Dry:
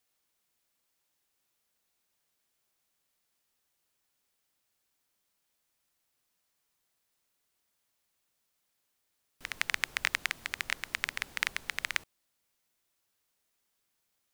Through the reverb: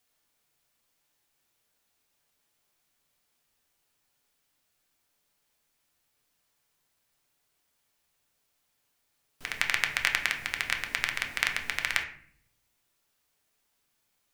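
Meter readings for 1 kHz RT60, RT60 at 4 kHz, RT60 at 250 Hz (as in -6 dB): 0.50 s, 0.40 s, 1.0 s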